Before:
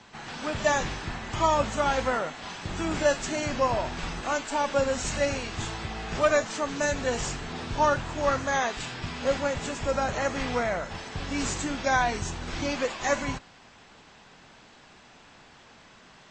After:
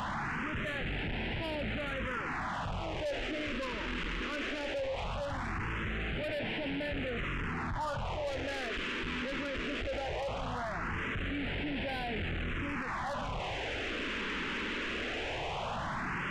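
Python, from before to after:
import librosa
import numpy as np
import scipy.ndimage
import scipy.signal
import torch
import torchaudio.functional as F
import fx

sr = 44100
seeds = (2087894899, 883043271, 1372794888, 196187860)

y = fx.delta_mod(x, sr, bps=16000, step_db=-21.5)
y = 10.0 ** (-25.5 / 20.0) * np.tanh(y / 10.0 ** (-25.5 / 20.0))
y = fx.phaser_stages(y, sr, stages=4, low_hz=120.0, high_hz=1200.0, hz=0.19, feedback_pct=0)
y = fx.env_flatten(y, sr, amount_pct=50)
y = y * 10.0 ** (-6.0 / 20.0)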